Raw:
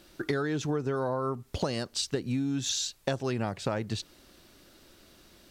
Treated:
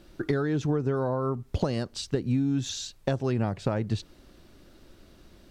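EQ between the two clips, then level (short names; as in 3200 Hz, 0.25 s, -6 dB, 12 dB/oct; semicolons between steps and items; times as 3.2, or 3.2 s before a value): tilt -2 dB/oct; 0.0 dB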